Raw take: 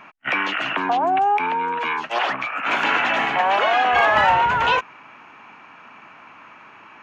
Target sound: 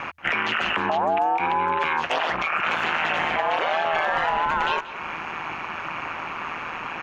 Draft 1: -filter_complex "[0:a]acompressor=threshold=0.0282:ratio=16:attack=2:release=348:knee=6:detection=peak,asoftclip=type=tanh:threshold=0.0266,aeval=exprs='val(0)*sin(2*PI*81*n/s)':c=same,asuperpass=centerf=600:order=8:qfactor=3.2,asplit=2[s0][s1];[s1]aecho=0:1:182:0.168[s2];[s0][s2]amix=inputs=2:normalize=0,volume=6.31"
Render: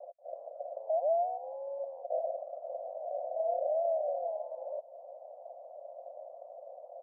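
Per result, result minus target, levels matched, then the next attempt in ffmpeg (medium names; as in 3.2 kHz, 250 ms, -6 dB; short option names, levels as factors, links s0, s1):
saturation: distortion +20 dB; 500 Hz band +8.0 dB
-filter_complex "[0:a]acompressor=threshold=0.0282:ratio=16:attack=2:release=348:knee=6:detection=peak,asoftclip=type=tanh:threshold=0.1,aeval=exprs='val(0)*sin(2*PI*81*n/s)':c=same,asuperpass=centerf=600:order=8:qfactor=3.2,asplit=2[s0][s1];[s1]aecho=0:1:182:0.168[s2];[s0][s2]amix=inputs=2:normalize=0,volume=6.31"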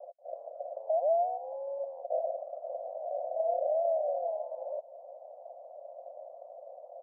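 500 Hz band +8.0 dB
-filter_complex "[0:a]acompressor=threshold=0.0282:ratio=16:attack=2:release=348:knee=6:detection=peak,asoftclip=type=tanh:threshold=0.1,aeval=exprs='val(0)*sin(2*PI*81*n/s)':c=same,asplit=2[s0][s1];[s1]aecho=0:1:182:0.168[s2];[s0][s2]amix=inputs=2:normalize=0,volume=6.31"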